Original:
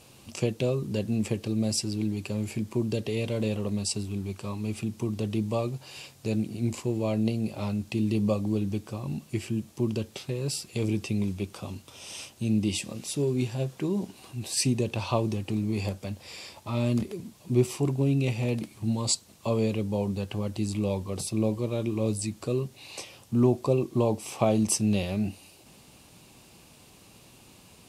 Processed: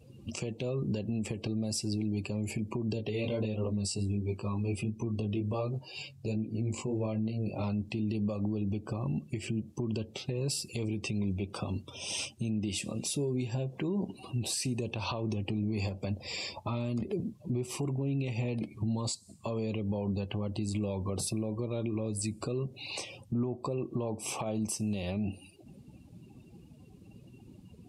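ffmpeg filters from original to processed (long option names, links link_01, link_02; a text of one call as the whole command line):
ffmpeg -i in.wav -filter_complex "[0:a]asettb=1/sr,asplit=3[link_01][link_02][link_03];[link_01]atrim=end=2.934[link_04];[link_02]atrim=start=2.93:end=7.64,asetpts=PTS-STARTPTS,afade=type=in:duration=0.004:curve=qsin,afade=type=out:start_time=4.706:duration=0.004:curve=qsin,flanger=delay=17.5:depth=3.6:speed=1.4[link_05];[link_03]atrim=start=7.636[link_06];[link_04][link_05]acrossfade=duration=0.004:curve1=hsin:curve2=qsin[link_07];[link_07][link_06]acrossfade=duration=0.004:curve1=qsin:curve2=hsin,afftdn=noise_reduction=25:noise_floor=-48,acompressor=threshold=-30dB:ratio=6,alimiter=level_in=6.5dB:limit=-24dB:level=0:latency=1:release=159,volume=-6.5dB,volume=6.5dB" out.wav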